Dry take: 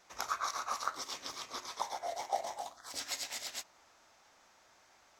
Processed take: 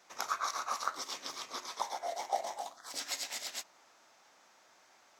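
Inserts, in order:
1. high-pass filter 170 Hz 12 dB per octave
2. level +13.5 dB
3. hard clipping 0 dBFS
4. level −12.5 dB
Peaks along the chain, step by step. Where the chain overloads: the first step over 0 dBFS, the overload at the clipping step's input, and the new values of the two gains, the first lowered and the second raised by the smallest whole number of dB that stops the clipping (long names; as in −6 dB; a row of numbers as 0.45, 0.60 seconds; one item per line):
−16.5, −3.0, −3.0, −15.5 dBFS
no step passes full scale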